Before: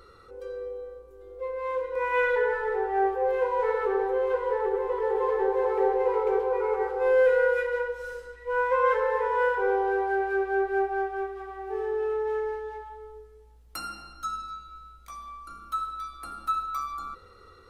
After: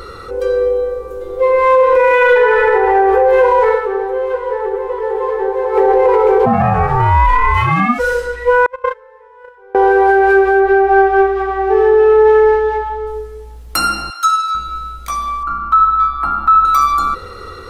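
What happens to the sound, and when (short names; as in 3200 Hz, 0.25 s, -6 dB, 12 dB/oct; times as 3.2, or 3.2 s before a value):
0.87–2.52 reverb throw, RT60 2.6 s, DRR 1.5 dB
3.68–5.85 dip -13.5 dB, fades 0.13 s
6.45–7.98 ring modulator 270 Hz -> 760 Hz
8.66–9.75 gate -19 dBFS, range -38 dB
10.6–13.07 air absorption 80 m
14.1–14.55 HPF 1000 Hz
15.43–16.65 EQ curve 190 Hz 0 dB, 510 Hz -10 dB, 920 Hz +7 dB, 8900 Hz -26 dB
whole clip: maximiser +24 dB; gain -2.5 dB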